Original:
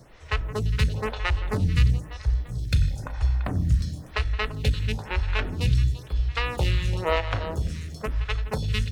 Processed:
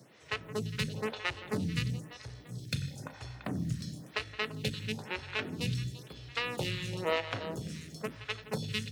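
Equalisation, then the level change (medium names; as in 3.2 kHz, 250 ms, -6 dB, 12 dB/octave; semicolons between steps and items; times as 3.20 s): high-pass 140 Hz 24 dB/octave; peaking EQ 1 kHz -6 dB 2 oct; -2.5 dB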